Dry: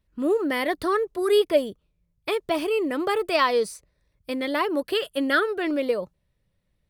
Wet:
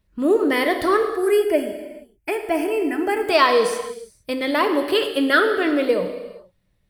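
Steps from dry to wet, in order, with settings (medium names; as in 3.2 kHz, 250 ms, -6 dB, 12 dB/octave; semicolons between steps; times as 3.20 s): 1.03–3.28 s: static phaser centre 770 Hz, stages 8; gated-style reverb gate 480 ms falling, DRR 5.5 dB; trim +4.5 dB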